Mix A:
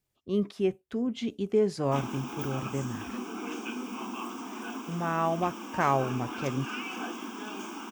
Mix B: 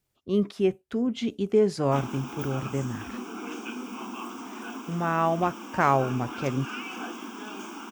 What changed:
speech +3.5 dB; master: remove band-stop 1.4 kHz, Q 19

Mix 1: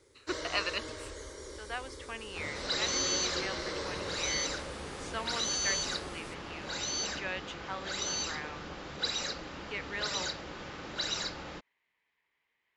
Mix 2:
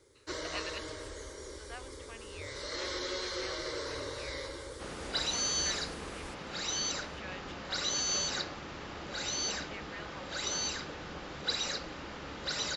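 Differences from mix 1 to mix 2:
speech -8.5 dB; second sound: entry +2.45 s

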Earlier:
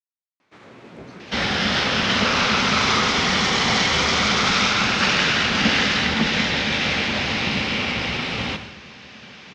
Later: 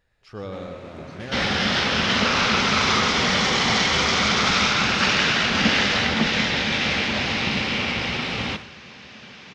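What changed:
speech: unmuted; second sound: send -6.5 dB

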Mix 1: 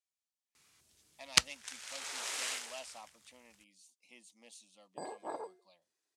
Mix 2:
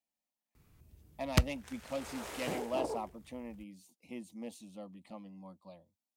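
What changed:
speech +10.0 dB; second sound: entry -2.50 s; master: remove frequency weighting ITU-R 468

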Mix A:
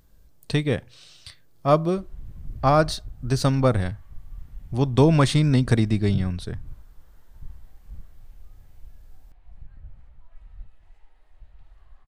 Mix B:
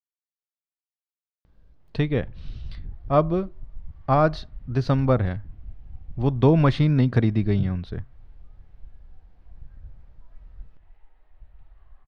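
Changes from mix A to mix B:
speech: entry +1.45 s; master: add distance through air 270 m

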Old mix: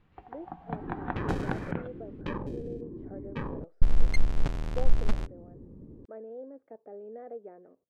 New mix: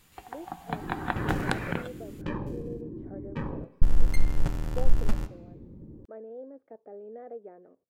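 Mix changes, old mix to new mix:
first sound: remove tape spacing loss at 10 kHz 44 dB; second sound: send on; master: remove distance through air 57 m

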